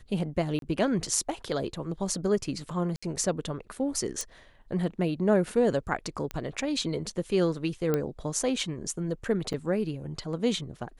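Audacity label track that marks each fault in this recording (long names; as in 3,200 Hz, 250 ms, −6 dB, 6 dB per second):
0.590000	0.620000	drop-out 32 ms
2.960000	3.020000	drop-out 65 ms
4.210000	4.210000	click
6.310000	6.310000	click −19 dBFS
7.940000	7.940000	click −14 dBFS
9.530000	9.540000	drop-out 6.9 ms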